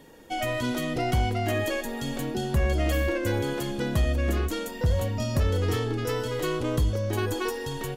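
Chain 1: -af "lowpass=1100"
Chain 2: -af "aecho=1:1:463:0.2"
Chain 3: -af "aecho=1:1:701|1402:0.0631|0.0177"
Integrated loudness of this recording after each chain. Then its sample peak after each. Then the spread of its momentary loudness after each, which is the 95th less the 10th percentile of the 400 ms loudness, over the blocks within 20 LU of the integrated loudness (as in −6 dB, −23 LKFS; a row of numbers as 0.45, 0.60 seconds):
−28.5, −27.5, −27.5 LKFS; −16.5, −15.0, −16.0 dBFS; 6, 5, 5 LU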